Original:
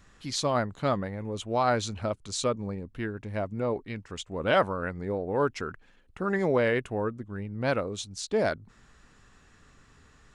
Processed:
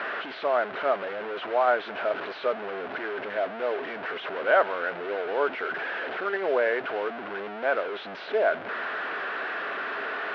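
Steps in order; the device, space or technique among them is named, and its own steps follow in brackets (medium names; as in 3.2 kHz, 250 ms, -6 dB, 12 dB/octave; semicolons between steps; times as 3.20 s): digital answering machine (band-pass 330–3100 Hz; one-bit delta coder 32 kbps, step -27 dBFS; cabinet simulation 360–3000 Hz, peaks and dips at 410 Hz +5 dB, 660 Hz +8 dB, 1.5 kHz +8 dB); trim -1.5 dB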